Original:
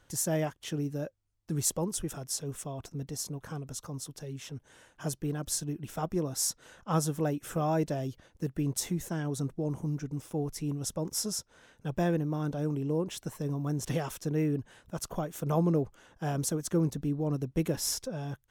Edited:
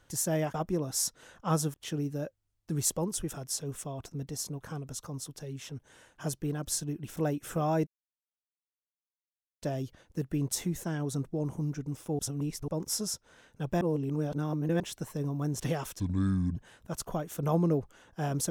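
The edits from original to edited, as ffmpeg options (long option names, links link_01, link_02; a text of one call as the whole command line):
ffmpeg -i in.wav -filter_complex "[0:a]asplit=11[link_01][link_02][link_03][link_04][link_05][link_06][link_07][link_08][link_09][link_10][link_11];[link_01]atrim=end=0.542[link_12];[link_02]atrim=start=5.968:end=7.172[link_13];[link_03]atrim=start=0.538:end=5.972[link_14];[link_04]atrim=start=7.168:end=7.87,asetpts=PTS-STARTPTS,afade=type=out:start_time=0.698:duration=0.004:curve=hsin,apad=pad_dur=1.75[link_15];[link_05]atrim=start=7.87:end=10.442,asetpts=PTS-STARTPTS,afade=type=in:duration=0.004:curve=hsin[link_16];[link_06]atrim=start=10.438:end=10.932,asetpts=PTS-STARTPTS,areverse[link_17];[link_07]atrim=start=10.928:end=12.062[link_18];[link_08]atrim=start=12.058:end=13.052,asetpts=PTS-STARTPTS,areverse[link_19];[link_09]atrim=start=13.048:end=14.254[link_20];[link_10]atrim=start=14.25:end=14.6,asetpts=PTS-STARTPTS,asetrate=27342,aresample=44100,atrim=end_sample=24895,asetpts=PTS-STARTPTS[link_21];[link_11]atrim=start=14.596[link_22];[link_12][link_13]acrossfade=duration=0.004:curve1=hsin:curve2=hsin[link_23];[link_23][link_14]acrossfade=duration=0.004:curve1=hsin:curve2=hsin[link_24];[link_15][link_16]concat=n=2:v=0:a=1[link_25];[link_24][link_25]acrossfade=duration=0.004:curve1=hsin:curve2=hsin[link_26];[link_26][link_17]acrossfade=duration=0.004:curve1=hsin:curve2=hsin[link_27];[link_27][link_18]acrossfade=duration=0.004:curve1=hsin:curve2=hsin[link_28];[link_28][link_19]acrossfade=duration=0.004:curve1=hsin:curve2=hsin[link_29];[link_29][link_20]acrossfade=duration=0.004:curve1=hsin:curve2=hsin[link_30];[link_30][link_21]acrossfade=duration=0.004:curve1=hsin:curve2=hsin[link_31];[link_31][link_22]acrossfade=duration=0.004:curve1=hsin:curve2=hsin" out.wav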